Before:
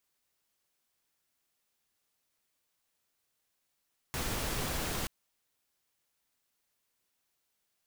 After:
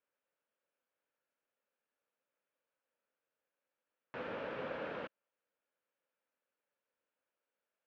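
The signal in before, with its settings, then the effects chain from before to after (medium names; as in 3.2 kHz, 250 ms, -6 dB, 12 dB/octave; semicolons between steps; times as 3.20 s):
noise pink, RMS -34.5 dBFS 0.93 s
cabinet simulation 320–2200 Hz, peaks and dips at 360 Hz -6 dB, 530 Hz +7 dB, 750 Hz -7 dB, 1.1 kHz -6 dB, 2 kHz -8 dB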